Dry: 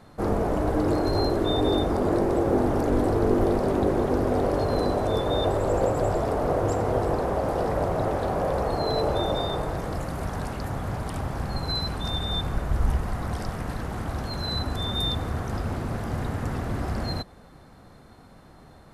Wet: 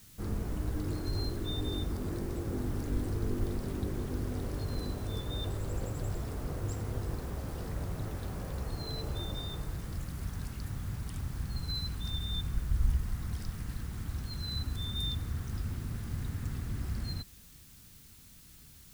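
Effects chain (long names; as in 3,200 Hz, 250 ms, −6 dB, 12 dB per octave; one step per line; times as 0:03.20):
background noise white −50 dBFS
guitar amp tone stack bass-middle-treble 6-0-2
level +7.5 dB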